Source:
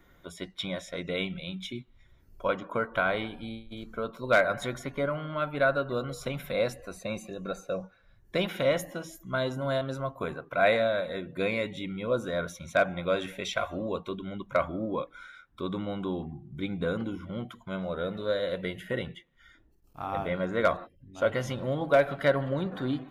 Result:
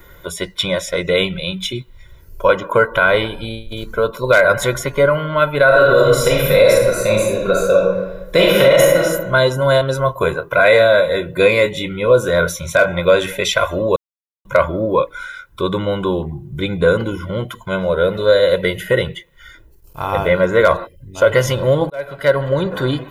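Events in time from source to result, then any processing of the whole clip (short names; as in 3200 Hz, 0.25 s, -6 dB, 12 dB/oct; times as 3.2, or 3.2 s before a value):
5.65–9.02 reverb throw, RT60 1.1 s, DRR -3 dB
10.04–13 doubler 24 ms -10 dB
13.96–14.45 mute
21.9–22.77 fade in
whole clip: high shelf 9100 Hz +11 dB; comb 2 ms, depth 62%; maximiser +15 dB; gain -1 dB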